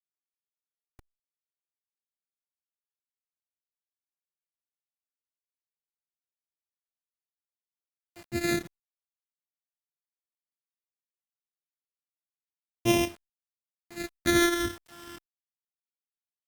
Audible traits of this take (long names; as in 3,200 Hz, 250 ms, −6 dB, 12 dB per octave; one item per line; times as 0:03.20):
a buzz of ramps at a fixed pitch in blocks of 128 samples
phaser sweep stages 12, 0.18 Hz, lowest notch 750–1,500 Hz
a quantiser's noise floor 8 bits, dither none
Opus